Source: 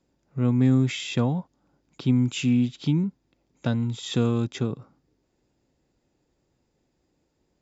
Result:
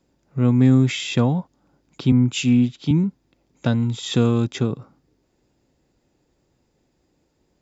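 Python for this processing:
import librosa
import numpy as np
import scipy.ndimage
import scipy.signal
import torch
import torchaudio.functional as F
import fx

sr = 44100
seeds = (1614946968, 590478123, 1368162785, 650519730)

y = fx.band_widen(x, sr, depth_pct=70, at=(2.12, 2.91))
y = y * librosa.db_to_amplitude(5.0)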